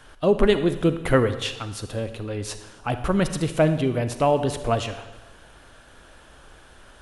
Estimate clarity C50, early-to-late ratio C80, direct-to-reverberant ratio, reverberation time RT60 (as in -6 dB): 10.5 dB, 13.0 dB, 10.0 dB, 1.1 s